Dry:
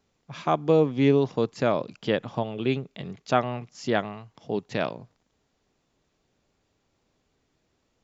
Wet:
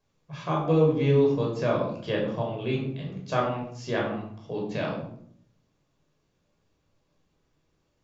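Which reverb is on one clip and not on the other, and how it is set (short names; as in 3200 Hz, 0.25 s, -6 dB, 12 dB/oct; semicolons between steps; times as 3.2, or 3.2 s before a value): shoebox room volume 1000 m³, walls furnished, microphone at 5.4 m; gain -8.5 dB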